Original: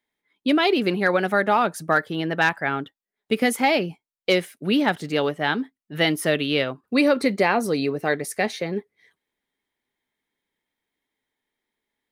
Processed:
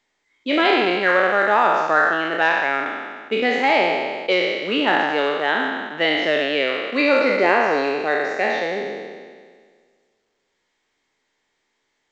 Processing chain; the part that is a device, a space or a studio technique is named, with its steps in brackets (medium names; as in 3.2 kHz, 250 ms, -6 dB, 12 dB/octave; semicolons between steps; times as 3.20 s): spectral sustain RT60 1.73 s; high-pass 110 Hz 12 dB/octave; telephone (band-pass 320–3400 Hz; A-law 128 kbps 16 kHz)